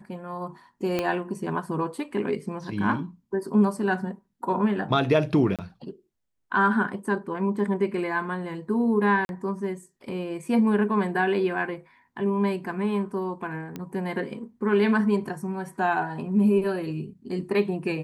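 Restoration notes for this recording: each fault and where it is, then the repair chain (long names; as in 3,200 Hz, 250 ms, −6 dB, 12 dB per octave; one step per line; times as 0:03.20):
0:00.99: click −12 dBFS
0:05.56–0:05.59: drop-out 27 ms
0:09.25–0:09.29: drop-out 41 ms
0:13.76: click −20 dBFS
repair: click removal
repair the gap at 0:05.56, 27 ms
repair the gap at 0:09.25, 41 ms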